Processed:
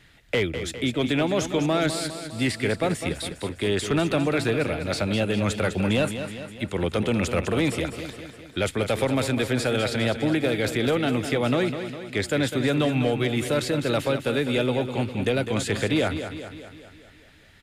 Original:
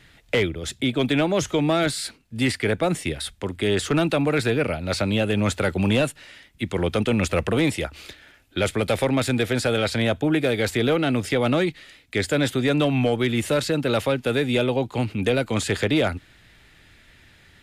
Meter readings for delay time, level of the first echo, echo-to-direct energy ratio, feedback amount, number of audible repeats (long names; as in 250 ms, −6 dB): 203 ms, −9.5 dB, −8.0 dB, 56%, 6